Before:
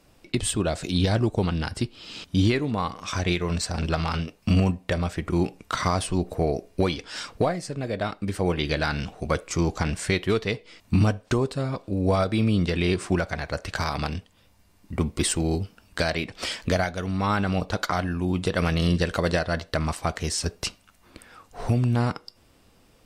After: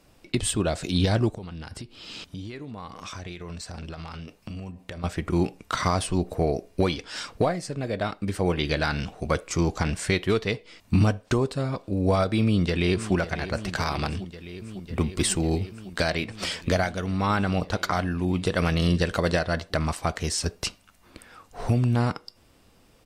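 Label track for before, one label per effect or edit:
1.330000	5.040000	downward compressor 8 to 1, threshold −34 dBFS
12.410000	13.140000	delay throw 550 ms, feedback 85%, level −13.5 dB

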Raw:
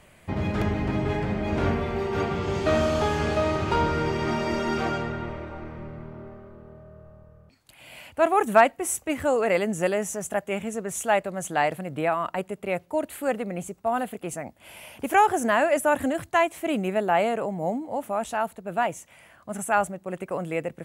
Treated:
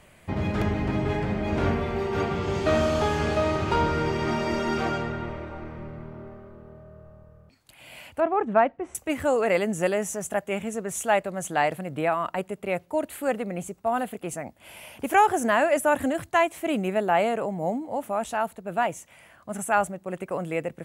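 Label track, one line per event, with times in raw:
8.200000	8.950000	head-to-tape spacing loss at 10 kHz 41 dB

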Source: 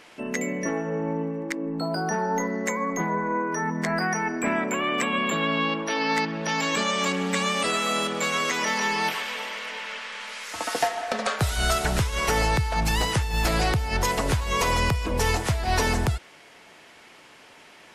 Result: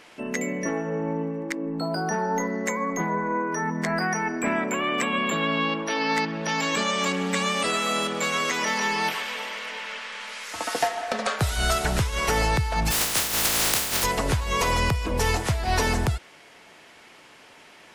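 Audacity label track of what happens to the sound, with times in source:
12.900000	14.030000	compressing power law on the bin magnitudes exponent 0.1

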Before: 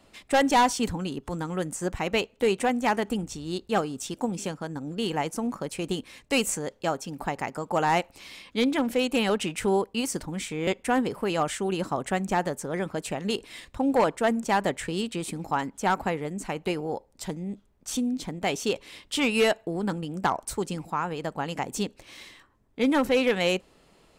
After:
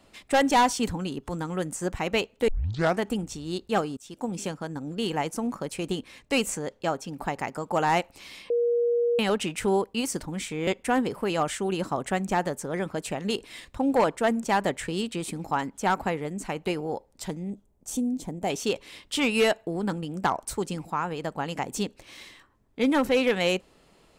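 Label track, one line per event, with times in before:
2.480000	2.480000	tape start 0.52 s
3.970000	4.380000	fade in, from −21.5 dB
5.910000	7.220000	high-shelf EQ 5,700 Hz −4.5 dB
8.500000	9.190000	beep over 475 Hz −20.5 dBFS
17.500000	18.500000	flat-topped bell 2,400 Hz −9.5 dB 2.5 octaves

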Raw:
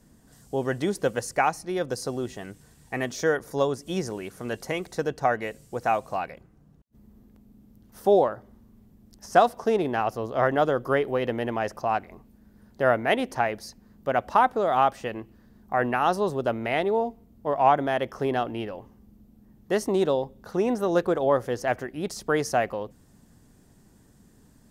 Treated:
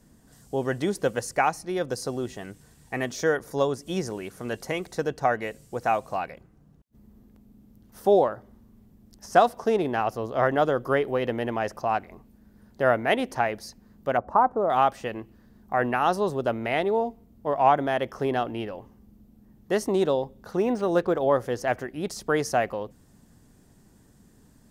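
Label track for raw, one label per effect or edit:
14.170000	14.700000	drawn EQ curve 1,100 Hz 0 dB, 3,400 Hz −27 dB, 6,800 Hz −19 dB
20.570000	21.230000	linearly interpolated sample-rate reduction rate divided by 3×

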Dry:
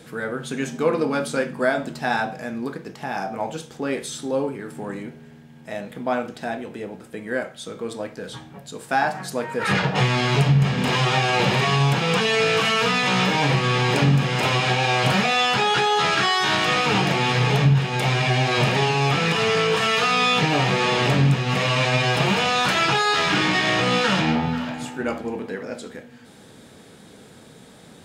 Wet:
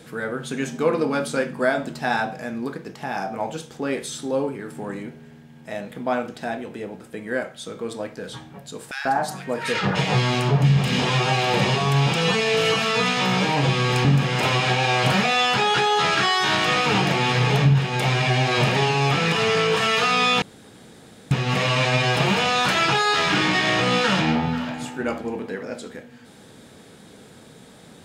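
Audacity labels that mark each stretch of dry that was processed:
8.910000	14.050000	multiband delay without the direct sound highs, lows 140 ms, split 1,600 Hz
20.420000	21.310000	fill with room tone

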